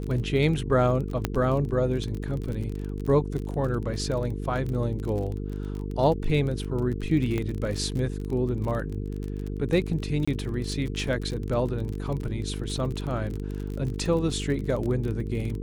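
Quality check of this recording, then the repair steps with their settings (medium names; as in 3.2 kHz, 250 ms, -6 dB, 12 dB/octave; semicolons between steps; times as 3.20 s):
buzz 50 Hz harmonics 9 -32 dBFS
crackle 31 per s -31 dBFS
1.25 s: pop -10 dBFS
7.38 s: pop -17 dBFS
10.25–10.28 s: dropout 25 ms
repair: de-click; de-hum 50 Hz, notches 9; interpolate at 10.25 s, 25 ms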